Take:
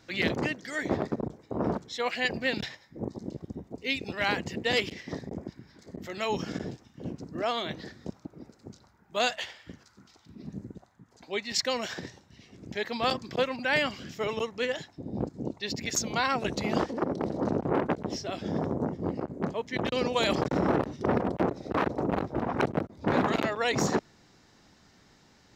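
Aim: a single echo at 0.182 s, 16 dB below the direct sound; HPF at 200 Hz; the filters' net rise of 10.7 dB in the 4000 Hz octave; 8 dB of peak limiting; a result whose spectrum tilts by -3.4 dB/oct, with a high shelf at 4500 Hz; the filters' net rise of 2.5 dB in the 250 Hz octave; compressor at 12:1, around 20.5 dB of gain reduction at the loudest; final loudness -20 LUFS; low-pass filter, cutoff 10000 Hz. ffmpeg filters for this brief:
-af "highpass=200,lowpass=10k,equalizer=f=250:t=o:g=5,equalizer=f=4k:t=o:g=9,highshelf=f=4.5k:g=9,acompressor=threshold=-33dB:ratio=12,alimiter=level_in=4.5dB:limit=-24dB:level=0:latency=1,volume=-4.5dB,aecho=1:1:182:0.158,volume=20dB"

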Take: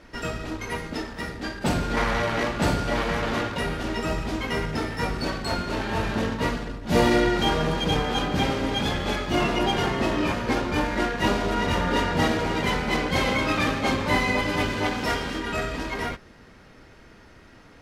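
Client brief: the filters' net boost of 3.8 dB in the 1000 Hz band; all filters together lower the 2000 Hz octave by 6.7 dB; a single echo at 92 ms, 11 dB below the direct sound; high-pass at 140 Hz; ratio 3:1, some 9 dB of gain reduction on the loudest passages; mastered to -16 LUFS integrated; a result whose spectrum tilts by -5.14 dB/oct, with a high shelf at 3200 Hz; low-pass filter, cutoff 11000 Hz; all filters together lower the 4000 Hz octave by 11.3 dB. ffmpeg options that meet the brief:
-af "highpass=140,lowpass=11k,equalizer=f=1k:t=o:g=7.5,equalizer=f=2k:t=o:g=-7.5,highshelf=f=3.2k:g=-7.5,equalizer=f=4k:t=o:g=-7.5,acompressor=threshold=-27dB:ratio=3,aecho=1:1:92:0.282,volume=14dB"

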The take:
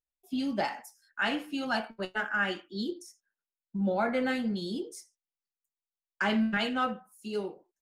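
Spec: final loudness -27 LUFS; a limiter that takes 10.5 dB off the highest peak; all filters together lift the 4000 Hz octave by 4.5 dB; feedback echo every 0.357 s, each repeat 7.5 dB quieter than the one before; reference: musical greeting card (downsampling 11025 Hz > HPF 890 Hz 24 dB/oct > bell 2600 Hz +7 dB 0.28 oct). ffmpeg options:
-af "equalizer=f=4k:t=o:g=3.5,alimiter=level_in=3dB:limit=-24dB:level=0:latency=1,volume=-3dB,aecho=1:1:357|714|1071|1428|1785:0.422|0.177|0.0744|0.0312|0.0131,aresample=11025,aresample=44100,highpass=f=890:w=0.5412,highpass=f=890:w=1.3066,equalizer=f=2.6k:t=o:w=0.28:g=7,volume=12dB"

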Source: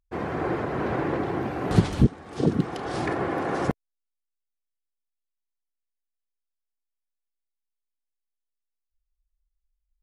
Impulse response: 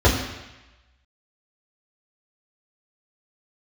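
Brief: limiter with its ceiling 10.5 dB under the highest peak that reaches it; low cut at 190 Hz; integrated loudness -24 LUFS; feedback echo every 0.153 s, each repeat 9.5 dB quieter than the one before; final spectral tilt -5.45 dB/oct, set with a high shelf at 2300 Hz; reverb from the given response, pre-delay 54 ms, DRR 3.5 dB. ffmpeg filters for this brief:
-filter_complex "[0:a]highpass=190,highshelf=f=2.3k:g=4,alimiter=limit=-19.5dB:level=0:latency=1,aecho=1:1:153|306|459|612:0.335|0.111|0.0365|0.012,asplit=2[a][b];[1:a]atrim=start_sample=2205,adelay=54[c];[b][c]afir=irnorm=-1:irlink=0,volume=-24.5dB[d];[a][d]amix=inputs=2:normalize=0,volume=2dB"

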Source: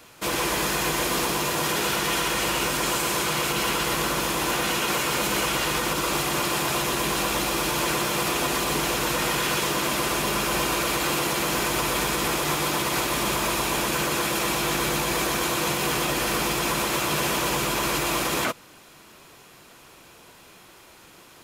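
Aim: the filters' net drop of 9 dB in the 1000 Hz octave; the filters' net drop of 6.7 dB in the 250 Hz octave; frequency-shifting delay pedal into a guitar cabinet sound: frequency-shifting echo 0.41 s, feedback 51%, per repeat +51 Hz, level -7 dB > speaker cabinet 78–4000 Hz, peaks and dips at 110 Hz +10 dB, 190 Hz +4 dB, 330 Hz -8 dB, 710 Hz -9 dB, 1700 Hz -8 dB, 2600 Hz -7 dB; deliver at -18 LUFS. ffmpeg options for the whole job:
-filter_complex "[0:a]equalizer=f=250:t=o:g=-7.5,equalizer=f=1k:t=o:g=-7.5,asplit=7[a][b][c][d][e][f][g];[b]adelay=410,afreqshift=51,volume=-7dB[h];[c]adelay=820,afreqshift=102,volume=-12.8dB[i];[d]adelay=1230,afreqshift=153,volume=-18.7dB[j];[e]adelay=1640,afreqshift=204,volume=-24.5dB[k];[f]adelay=2050,afreqshift=255,volume=-30.4dB[l];[g]adelay=2460,afreqshift=306,volume=-36.2dB[m];[a][h][i][j][k][l][m]amix=inputs=7:normalize=0,highpass=78,equalizer=f=110:t=q:w=4:g=10,equalizer=f=190:t=q:w=4:g=4,equalizer=f=330:t=q:w=4:g=-8,equalizer=f=710:t=q:w=4:g=-9,equalizer=f=1.7k:t=q:w=4:g=-8,equalizer=f=2.6k:t=q:w=4:g=-7,lowpass=f=4k:w=0.5412,lowpass=f=4k:w=1.3066,volume=12dB"

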